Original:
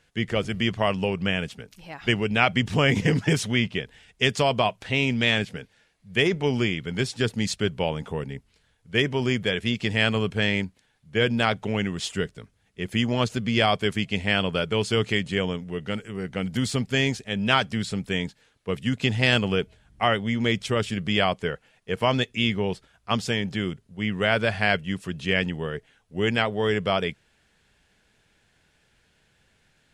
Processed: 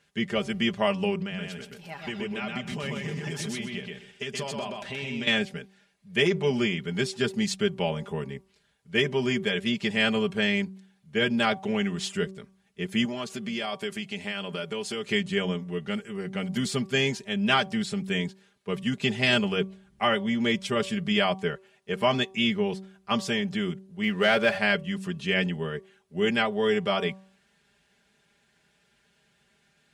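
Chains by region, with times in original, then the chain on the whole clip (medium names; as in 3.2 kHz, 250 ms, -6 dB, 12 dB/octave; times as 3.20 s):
1.18–5.27 s: compression 5:1, threshold -29 dBFS + feedback delay 126 ms, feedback 22%, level -3 dB
13.05–15.08 s: high-pass 190 Hz 6 dB/octave + treble shelf 8.6 kHz +5 dB + compression 2.5:1, threshold -29 dBFS
24.03–24.58 s: tone controls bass -6 dB, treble -3 dB + waveshaping leveller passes 1
whole clip: high-pass 81 Hz; comb 5 ms, depth 78%; de-hum 191 Hz, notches 6; trim -3.5 dB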